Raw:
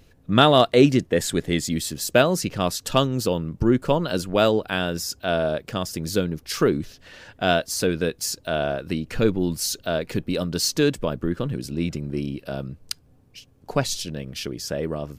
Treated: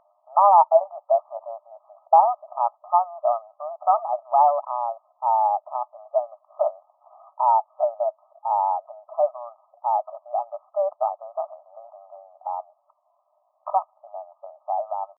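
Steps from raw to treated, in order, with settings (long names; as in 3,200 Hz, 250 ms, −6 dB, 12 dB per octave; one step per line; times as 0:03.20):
pitch shifter +5 semitones
linear-phase brick-wall band-pass 580–1,300 Hz
level +4 dB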